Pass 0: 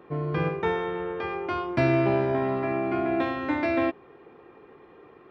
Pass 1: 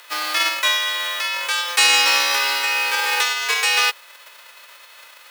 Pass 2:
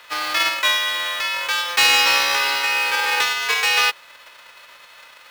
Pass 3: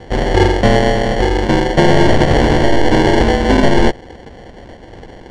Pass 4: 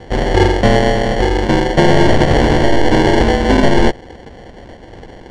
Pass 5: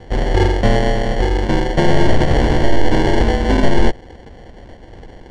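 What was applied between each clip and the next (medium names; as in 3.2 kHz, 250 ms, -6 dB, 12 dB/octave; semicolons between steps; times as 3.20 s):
formants flattened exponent 0.3; frequency shift +160 Hz; high-pass 1.1 kHz 12 dB/octave; trim +8.5 dB
median filter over 5 samples; trim +1 dB
sample-and-hold 35×; distance through air 120 m; loudness maximiser +11.5 dB; trim -1 dB
no audible change
bass shelf 79 Hz +8 dB; trim -5 dB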